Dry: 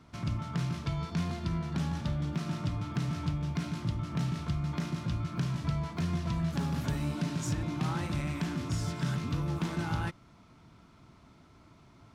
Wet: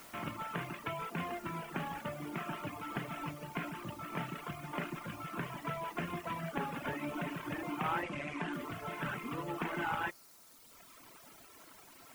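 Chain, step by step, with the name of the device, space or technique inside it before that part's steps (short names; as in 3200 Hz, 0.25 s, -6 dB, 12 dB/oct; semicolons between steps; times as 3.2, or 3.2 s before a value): army field radio (BPF 380–2800 Hz; CVSD 16 kbps; white noise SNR 18 dB); reverb removal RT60 1.7 s; 8.03–8.53 LPF 8800 Hz 24 dB/oct; gain +6 dB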